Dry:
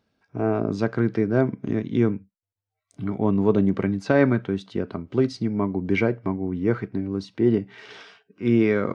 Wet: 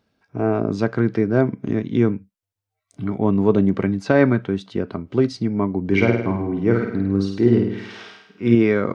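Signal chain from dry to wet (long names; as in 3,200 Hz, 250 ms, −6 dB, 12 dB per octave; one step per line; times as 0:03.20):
0:05.85–0:08.55: flutter between parallel walls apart 8.8 metres, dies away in 0.74 s
level +3 dB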